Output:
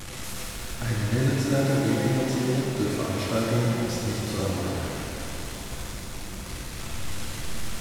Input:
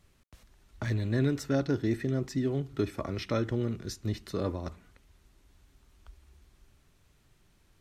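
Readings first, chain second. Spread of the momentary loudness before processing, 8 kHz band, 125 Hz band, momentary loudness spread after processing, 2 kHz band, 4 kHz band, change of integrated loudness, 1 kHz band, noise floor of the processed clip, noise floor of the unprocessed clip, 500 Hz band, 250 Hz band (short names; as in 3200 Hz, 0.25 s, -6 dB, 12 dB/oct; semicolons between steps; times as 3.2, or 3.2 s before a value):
8 LU, +15.5 dB, +6.5 dB, 12 LU, +9.5 dB, +12.0 dB, +4.0 dB, +10.0 dB, -37 dBFS, -66 dBFS, +5.0 dB, +5.5 dB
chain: delta modulation 64 kbps, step -33 dBFS; notch 430 Hz, Q 12; shimmer reverb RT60 2.9 s, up +7 st, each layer -8 dB, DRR -4 dB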